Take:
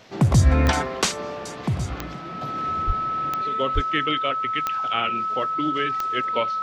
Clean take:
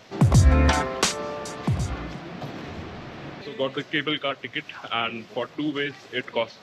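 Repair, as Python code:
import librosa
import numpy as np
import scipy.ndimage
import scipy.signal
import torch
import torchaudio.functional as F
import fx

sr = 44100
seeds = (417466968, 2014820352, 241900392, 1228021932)

y = fx.fix_declick_ar(x, sr, threshold=10.0)
y = fx.notch(y, sr, hz=1300.0, q=30.0)
y = fx.fix_deplosive(y, sr, at_s=(2.86, 3.74))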